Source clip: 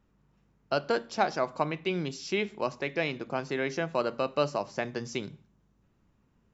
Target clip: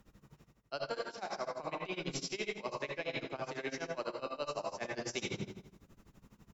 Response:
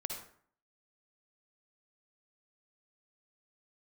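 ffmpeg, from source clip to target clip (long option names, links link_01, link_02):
-filter_complex "[0:a]acrossover=split=340[link_01][link_02];[link_01]asoftclip=type=tanh:threshold=-39.5dB[link_03];[link_03][link_02]amix=inputs=2:normalize=0[link_04];[1:a]atrim=start_sample=2205,asetrate=39690,aresample=44100[link_05];[link_04][link_05]afir=irnorm=-1:irlink=0,areverse,acompressor=threshold=-44dB:ratio=10,areverse,aemphasis=mode=production:type=cd,aecho=1:1:158|316|474:0.237|0.0569|0.0137,tremolo=f=12:d=0.9,volume=10.5dB"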